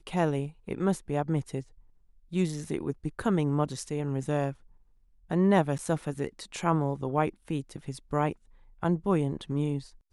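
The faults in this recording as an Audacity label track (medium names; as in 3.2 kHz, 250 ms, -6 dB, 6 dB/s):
5.780000	5.790000	dropout 9.2 ms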